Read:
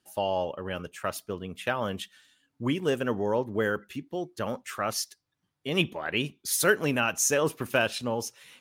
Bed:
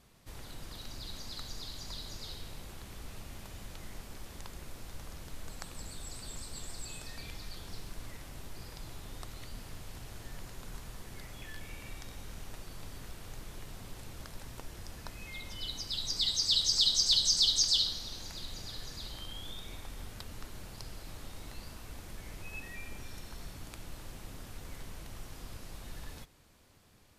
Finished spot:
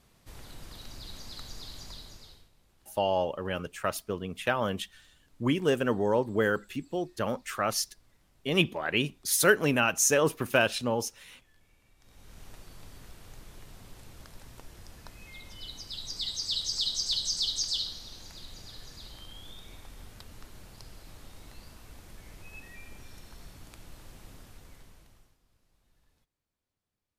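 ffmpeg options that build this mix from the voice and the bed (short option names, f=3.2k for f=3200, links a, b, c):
-filter_complex "[0:a]adelay=2800,volume=1dB[a];[1:a]volume=16dB,afade=t=out:st=1.8:d=0.7:silence=0.105925,afade=t=in:st=11.98:d=0.48:silence=0.149624,afade=t=out:st=24.32:d=1.06:silence=0.0794328[b];[a][b]amix=inputs=2:normalize=0"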